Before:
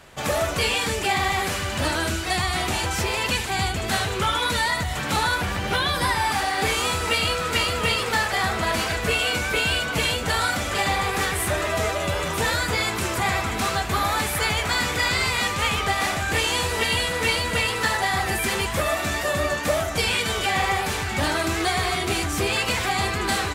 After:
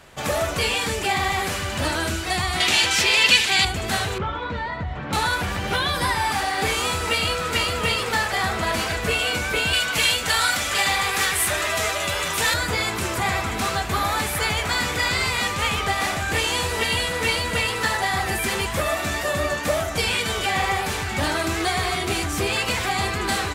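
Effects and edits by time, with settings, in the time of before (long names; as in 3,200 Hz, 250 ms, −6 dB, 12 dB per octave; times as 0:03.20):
0:02.60–0:03.65: meter weighting curve D
0:04.18–0:05.13: head-to-tape spacing loss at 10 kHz 41 dB
0:09.73–0:12.54: tilt shelving filter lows −6 dB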